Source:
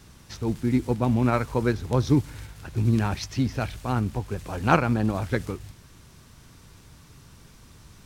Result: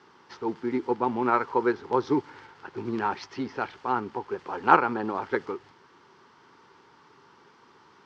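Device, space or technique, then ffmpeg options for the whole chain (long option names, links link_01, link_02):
phone earpiece: -af "highpass=370,equalizer=frequency=390:width_type=q:width=4:gain=8,equalizer=frequency=630:width_type=q:width=4:gain=-8,equalizer=frequency=900:width_type=q:width=4:gain=9,equalizer=frequency=1300:width_type=q:width=4:gain=4,equalizer=frequency=2500:width_type=q:width=4:gain=-6,equalizer=frequency=3800:width_type=q:width=4:gain=-8,lowpass=frequency=4300:width=0.5412,lowpass=frequency=4300:width=1.3066"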